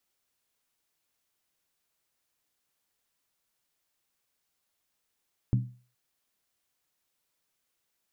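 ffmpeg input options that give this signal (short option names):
-f lavfi -i "aevalsrc='0.119*pow(10,-3*t/0.39)*sin(2*PI*123*t)+0.0501*pow(10,-3*t/0.309)*sin(2*PI*196.1*t)+0.0211*pow(10,-3*t/0.267)*sin(2*PI*262.7*t)+0.00891*pow(10,-3*t/0.257)*sin(2*PI*282.4*t)+0.00376*pow(10,-3*t/0.239)*sin(2*PI*326.3*t)':d=0.42:s=44100"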